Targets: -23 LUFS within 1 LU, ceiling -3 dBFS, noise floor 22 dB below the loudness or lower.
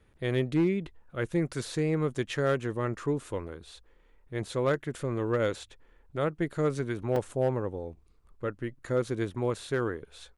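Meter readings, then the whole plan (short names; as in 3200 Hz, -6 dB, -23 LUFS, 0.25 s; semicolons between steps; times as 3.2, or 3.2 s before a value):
clipped 0.3%; flat tops at -19.0 dBFS; dropouts 1; longest dropout 2.8 ms; loudness -31.0 LUFS; peak -19.0 dBFS; loudness target -23.0 LUFS
-> clip repair -19 dBFS; interpolate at 7.16, 2.8 ms; gain +8 dB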